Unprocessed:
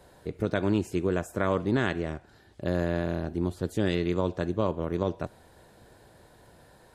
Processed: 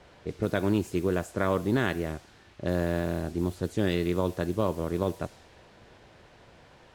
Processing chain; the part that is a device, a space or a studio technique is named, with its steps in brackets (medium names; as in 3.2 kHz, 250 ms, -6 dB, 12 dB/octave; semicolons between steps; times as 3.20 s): cassette deck with a dynamic noise filter (white noise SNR 23 dB; level-controlled noise filter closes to 2.7 kHz, open at -24 dBFS)